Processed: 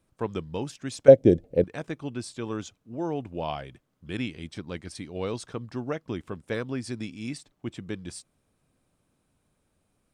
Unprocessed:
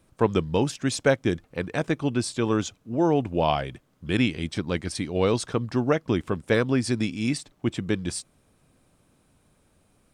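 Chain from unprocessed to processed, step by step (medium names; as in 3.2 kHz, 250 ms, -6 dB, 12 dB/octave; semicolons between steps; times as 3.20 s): 1.08–1.64 s: resonant low shelf 780 Hz +12.5 dB, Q 3; trim -9 dB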